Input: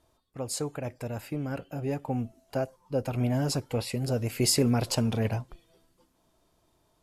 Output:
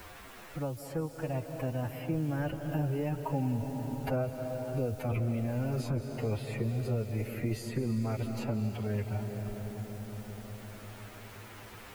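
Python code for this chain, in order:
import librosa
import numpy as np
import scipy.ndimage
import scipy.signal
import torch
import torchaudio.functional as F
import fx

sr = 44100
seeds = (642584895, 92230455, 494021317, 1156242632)

p1 = fx.doppler_pass(x, sr, speed_mps=24, closest_m=11.0, pass_at_s=2.23)
p2 = fx.band_shelf(p1, sr, hz=6000.0, db=-10.0, octaves=1.7)
p3 = fx.over_compress(p2, sr, threshold_db=-38.0, ratio=-0.5)
p4 = p2 + F.gain(torch.from_numpy(p3), 1.0).numpy()
p5 = fx.low_shelf(p4, sr, hz=100.0, db=8.0)
p6 = fx.dereverb_blind(p5, sr, rt60_s=0.52)
p7 = fx.quant_dither(p6, sr, seeds[0], bits=10, dither='triangular')
p8 = fx.stretch_vocoder(p7, sr, factor=1.7)
p9 = fx.rev_freeverb(p8, sr, rt60_s=4.2, hf_ratio=0.8, predelay_ms=120, drr_db=7.0)
p10 = fx.band_squash(p9, sr, depth_pct=70)
y = F.gain(torch.from_numpy(p10), -1.5).numpy()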